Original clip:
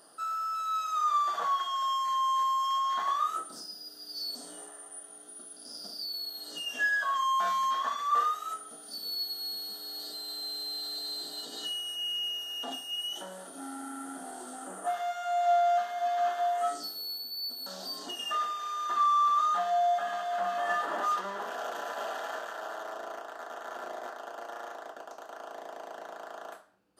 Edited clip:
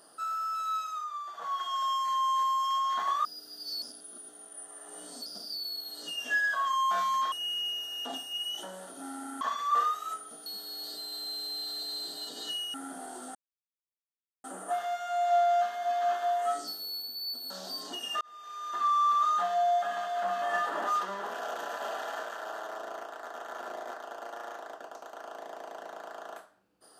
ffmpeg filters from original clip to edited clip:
ffmpeg -i in.wav -filter_complex "[0:a]asplit=12[link_01][link_02][link_03][link_04][link_05][link_06][link_07][link_08][link_09][link_10][link_11][link_12];[link_01]atrim=end=1.08,asetpts=PTS-STARTPTS,afade=type=out:start_time=0.7:duration=0.38:silence=0.266073[link_13];[link_02]atrim=start=1.08:end=1.36,asetpts=PTS-STARTPTS,volume=-11.5dB[link_14];[link_03]atrim=start=1.36:end=3.252,asetpts=PTS-STARTPTS,afade=type=in:duration=0.38:silence=0.266073[link_15];[link_04]atrim=start=3.738:end=4.312[link_16];[link_05]atrim=start=4.308:end=5.752,asetpts=PTS-STARTPTS,areverse[link_17];[link_06]atrim=start=5.748:end=7.812[link_18];[link_07]atrim=start=11.898:end=13.992[link_19];[link_08]atrim=start=7.808:end=8.862[link_20];[link_09]atrim=start=9.618:end=11.902[link_21];[link_10]atrim=start=13.988:end=14.6,asetpts=PTS-STARTPTS,afade=type=out:start_time=0.608:duration=0.004:curve=hsin,apad=pad_dur=1.09[link_22];[link_11]atrim=start=14.6:end=18.37,asetpts=PTS-STARTPTS,afade=type=in:duration=0.004:curve=hsin,afade=type=out:start_time=3.766:duration=0.004:curve=hsin[link_23];[link_12]atrim=start=18.37,asetpts=PTS-STARTPTS,afade=type=in:duration=1.06:curve=qsin[link_24];[link_13][link_14][link_15]concat=n=3:v=0:a=1[link_25];[link_25][link_16]acrossfade=duration=0.004:curve1=hsin:curve2=hsin[link_26];[link_26][link_17]acrossfade=duration=0.004:curve1=hsin:curve2=hsin[link_27];[link_27][link_18]acrossfade=duration=0.004:curve1=hsin:curve2=hsin[link_28];[link_28][link_19]acrossfade=duration=0.004:curve1=hsin:curve2=hsin[link_29];[link_29][link_20]acrossfade=duration=0.004:curve1=hsin:curve2=hsin[link_30];[link_30][link_21]acrossfade=duration=0.004:curve1=hsin:curve2=hsin[link_31];[link_22][link_23][link_24]concat=n=3:v=0:a=1[link_32];[link_31][link_32]acrossfade=duration=0.004:curve1=hsin:curve2=hsin" out.wav

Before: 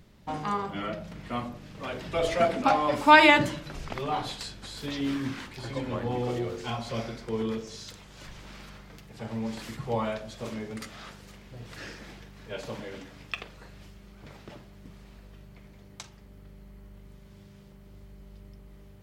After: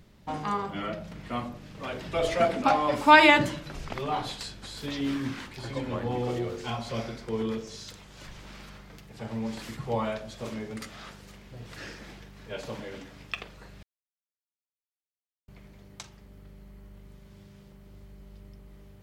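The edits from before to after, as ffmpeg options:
ffmpeg -i in.wav -filter_complex "[0:a]asplit=3[link_01][link_02][link_03];[link_01]atrim=end=13.83,asetpts=PTS-STARTPTS,afade=type=out:start_time=13.826:duration=0.004:curve=hsin[link_04];[link_02]atrim=start=13.83:end=15.48,asetpts=PTS-STARTPTS,volume=0[link_05];[link_03]atrim=start=15.48,asetpts=PTS-STARTPTS,afade=type=in:duration=0.004:curve=hsin[link_06];[link_04][link_05][link_06]concat=n=3:v=0:a=1" out.wav

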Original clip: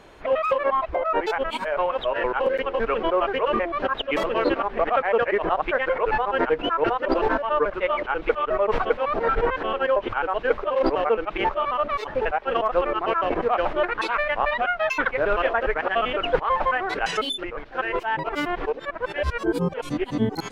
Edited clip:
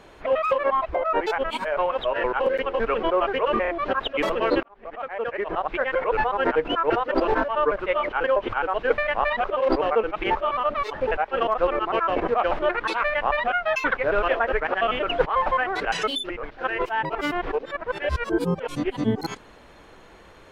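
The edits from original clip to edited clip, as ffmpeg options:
ffmpeg -i in.wav -filter_complex "[0:a]asplit=7[link_01][link_02][link_03][link_04][link_05][link_06][link_07];[link_01]atrim=end=3.652[link_08];[link_02]atrim=start=3.618:end=3.652[link_09];[link_03]atrim=start=3.618:end=4.57,asetpts=PTS-STARTPTS,afade=type=out:start_time=0.948:duration=0.004:curve=hsin[link_10];[link_04]atrim=start=4.57:end=8.182,asetpts=PTS-STARTPTS,afade=type=in:duration=1.46[link_11];[link_05]atrim=start=9.838:end=10.582[link_12];[link_06]atrim=start=14.188:end=14.652[link_13];[link_07]atrim=start=10.578[link_14];[link_08][link_09]acrossfade=duration=0.004:curve1=hsin:curve2=hsin[link_15];[link_10][link_11]concat=n=2:v=0:a=1[link_16];[link_15][link_16]acrossfade=duration=0.004:curve1=hsin:curve2=hsin[link_17];[link_17][link_12]acrossfade=duration=0.004:curve1=hsin:curve2=hsin[link_18];[link_18][link_13]acrossfade=duration=0.004:curve1=hsin:curve2=hsin[link_19];[link_19][link_14]acrossfade=duration=0.004:curve1=hsin:curve2=hsin" out.wav

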